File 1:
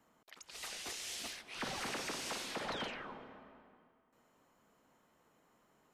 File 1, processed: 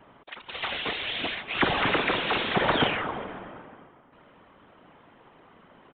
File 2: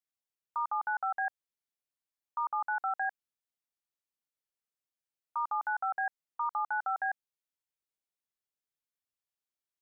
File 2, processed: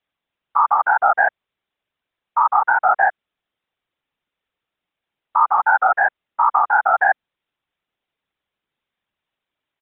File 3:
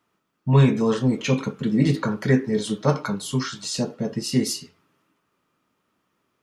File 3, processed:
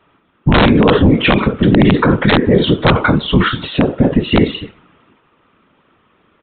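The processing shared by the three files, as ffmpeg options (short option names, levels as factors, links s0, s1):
-af "afftfilt=real='hypot(re,im)*cos(2*PI*random(0))':imag='hypot(re,im)*sin(2*PI*random(1))':win_size=512:overlap=0.75,aeval=exprs='0.398*(cos(1*acos(clip(val(0)/0.398,-1,1)))-cos(1*PI/2))+0.0158*(cos(3*acos(clip(val(0)/0.398,-1,1)))-cos(3*PI/2))+0.0178*(cos(5*acos(clip(val(0)/0.398,-1,1)))-cos(5*PI/2))':c=same,aresample=8000,aeval=exprs='(mod(6.68*val(0)+1,2)-1)/6.68':c=same,aresample=44100,alimiter=level_in=14.1:limit=0.891:release=50:level=0:latency=1,volume=0.891"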